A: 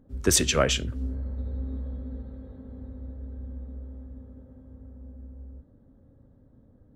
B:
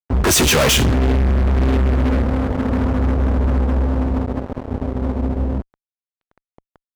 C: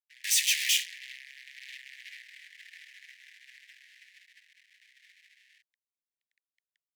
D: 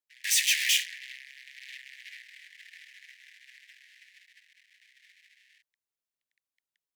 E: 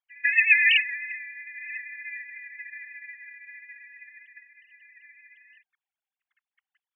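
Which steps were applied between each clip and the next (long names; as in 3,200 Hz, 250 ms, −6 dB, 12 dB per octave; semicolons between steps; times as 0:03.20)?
high-pass filter 65 Hz 12 dB per octave; low-pass that shuts in the quiet parts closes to 890 Hz, open at −23 dBFS; fuzz pedal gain 45 dB, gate −48 dBFS
Butterworth high-pass 1,800 Hz 96 dB per octave; level −8.5 dB
dynamic equaliser 1,500 Hz, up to +6 dB, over −47 dBFS, Q 1.2
three sine waves on the formant tracks; level +6 dB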